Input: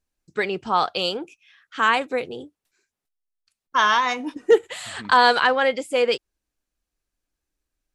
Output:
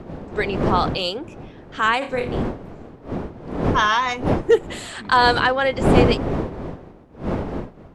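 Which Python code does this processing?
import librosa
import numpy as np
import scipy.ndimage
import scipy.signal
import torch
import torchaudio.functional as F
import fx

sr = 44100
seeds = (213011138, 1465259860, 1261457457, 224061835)

y = fx.dmg_wind(x, sr, seeds[0], corner_hz=410.0, level_db=-25.0)
y = fx.room_flutter(y, sr, wall_m=4.9, rt60_s=0.3, at=(2.01, 2.41), fade=0.02)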